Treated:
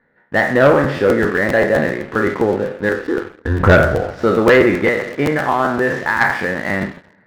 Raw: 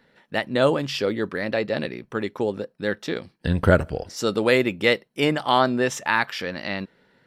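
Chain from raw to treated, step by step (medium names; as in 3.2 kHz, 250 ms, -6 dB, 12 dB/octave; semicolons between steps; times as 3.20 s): spectral sustain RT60 0.55 s; resonant high shelf 2.3 kHz -6 dB, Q 3; 2.89–3.60 s: static phaser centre 610 Hz, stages 6; 4.75–6.21 s: compression 3:1, threshold -21 dBFS, peak gain reduction 7.5 dB; distance through air 310 m; two-slope reverb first 0.31 s, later 3 s, from -17 dB, DRR 9 dB; waveshaping leveller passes 2; crackling interface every 0.13 s, samples 512, repeat, from 0.83 s; trim +1 dB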